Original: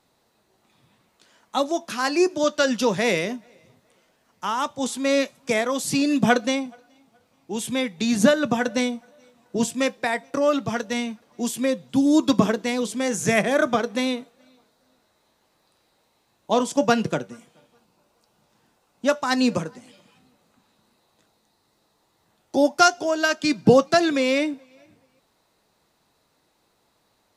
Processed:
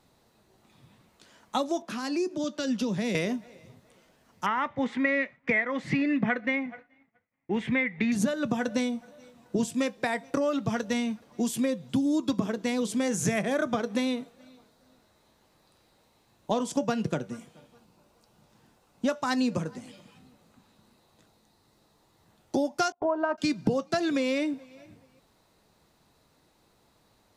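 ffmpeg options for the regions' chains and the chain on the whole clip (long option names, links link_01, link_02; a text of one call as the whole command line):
ffmpeg -i in.wav -filter_complex "[0:a]asettb=1/sr,asplit=3[link_01][link_02][link_03];[link_01]atrim=end=1.824[link_04];[link_02]atrim=start=1.82:end=3.15,asetpts=PTS-STARTPTS,afade=type=in:duration=0.004:curve=qsin,afade=type=out:start_time=1.326:duration=0.004:curve=qsin,highpass=190,highshelf=frequency=2900:gain=-11.5,acrossover=split=260|3000[link_05][link_06][link_07];[link_06]acompressor=threshold=-37dB:ratio=4:attack=3.2:release=140:knee=2.83:detection=peak[link_08];[link_05][link_08][link_07]amix=inputs=3:normalize=0[link_09];[link_03]atrim=start=3.146[link_10];[link_04][link_09]acrossfade=duration=0.004:curve1=hsin:curve2=qsin[link_11];[link_11][link_10]acrossfade=duration=0.004:curve1=qsin:curve2=hsin,asettb=1/sr,asplit=3[link_12][link_13][link_14];[link_12]atrim=end=4.464[link_15];[link_13]atrim=start=4.46:end=8.12,asetpts=PTS-STARTPTS,afade=type=in:duration=0.004:curve=qsin,afade=type=out:start_time=3.656:duration=0.004:curve=qsin,agate=range=-33dB:threshold=-49dB:ratio=3:release=100:detection=peak,lowpass=frequency=2000:width_type=q:width=8.5[link_16];[link_14]atrim=start=8.116[link_17];[link_15][link_16]acrossfade=duration=0.004:curve1=hsin:curve2=qsin[link_18];[link_18][link_17]acrossfade=duration=0.004:curve1=qsin:curve2=hsin,asettb=1/sr,asplit=3[link_19][link_20][link_21];[link_19]atrim=end=22.924[link_22];[link_20]atrim=start=22.92:end=23.38,asetpts=PTS-STARTPTS,afade=type=in:duration=0.004:curve=qsin,afade=type=out:start_time=0.456:duration=0.004:curve=qsin,lowpass=frequency=1000:width_type=q:width=3.7,agate=range=-29dB:threshold=-29dB:ratio=16:release=100:detection=peak[link_23];[link_21]atrim=start=23.376[link_24];[link_22][link_23]acrossfade=duration=0.004:curve1=hsin:curve2=qsin[link_25];[link_25][link_24]acrossfade=duration=0.004:curve1=qsin:curve2=hsin,lowshelf=frequency=230:gain=8,acompressor=threshold=-24dB:ratio=6" out.wav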